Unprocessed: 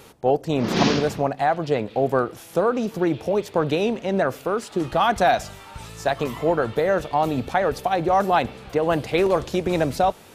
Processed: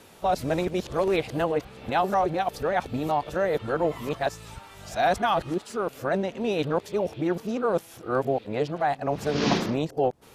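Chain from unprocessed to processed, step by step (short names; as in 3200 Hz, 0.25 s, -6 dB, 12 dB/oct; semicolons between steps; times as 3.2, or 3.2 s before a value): whole clip reversed; gain -4.5 dB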